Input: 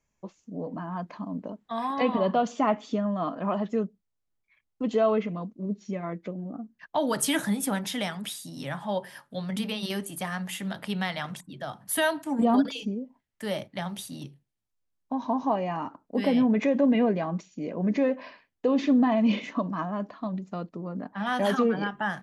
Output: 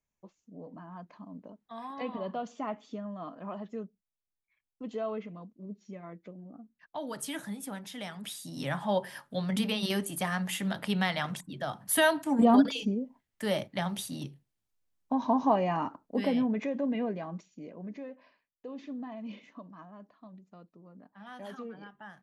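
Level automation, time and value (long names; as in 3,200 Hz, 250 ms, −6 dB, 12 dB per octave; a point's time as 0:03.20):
0:07.92 −11.5 dB
0:08.63 +1 dB
0:15.83 +1 dB
0:16.69 −9 dB
0:17.52 −9 dB
0:18.04 −18.5 dB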